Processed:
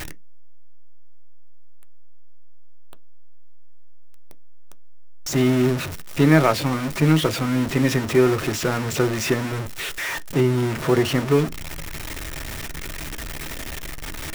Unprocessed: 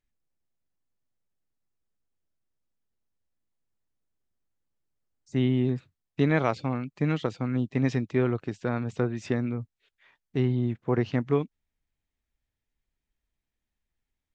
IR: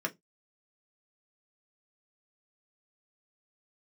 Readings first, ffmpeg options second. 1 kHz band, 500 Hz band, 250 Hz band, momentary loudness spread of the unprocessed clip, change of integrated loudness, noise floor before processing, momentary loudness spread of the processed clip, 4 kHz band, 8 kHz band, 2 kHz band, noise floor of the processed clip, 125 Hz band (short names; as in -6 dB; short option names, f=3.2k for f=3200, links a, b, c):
+9.0 dB, +8.5 dB, +7.0 dB, 8 LU, +6.0 dB, under -85 dBFS, 14 LU, +16.5 dB, n/a, +11.0 dB, -31 dBFS, +6.0 dB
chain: -filter_complex "[0:a]aeval=exprs='val(0)+0.5*0.0447*sgn(val(0))':c=same,acrusher=bits=6:mix=0:aa=0.5,asplit=2[a][b];[1:a]atrim=start_sample=2205[c];[b][c]afir=irnorm=-1:irlink=0,volume=-9dB[d];[a][d]amix=inputs=2:normalize=0,volume=3dB"